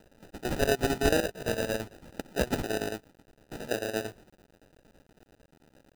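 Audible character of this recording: a quantiser's noise floor 10-bit, dither none; chopped level 8.9 Hz, depth 65%, duty 70%; aliases and images of a low sample rate 1100 Hz, jitter 0%

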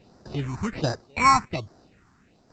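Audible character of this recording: tremolo saw down 1.2 Hz, depth 60%; aliases and images of a low sample rate 3300 Hz, jitter 0%; phasing stages 4, 1.3 Hz, lowest notch 510–2700 Hz; A-law

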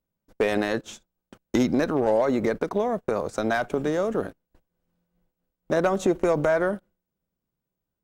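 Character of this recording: noise floor -85 dBFS; spectral tilt -3.0 dB/oct

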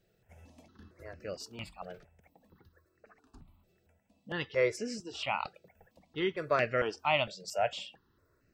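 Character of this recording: notches that jump at a steady rate 4.4 Hz 270–3400 Hz

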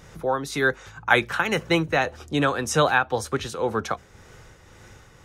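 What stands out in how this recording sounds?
tremolo triangle 1.9 Hz, depth 50%

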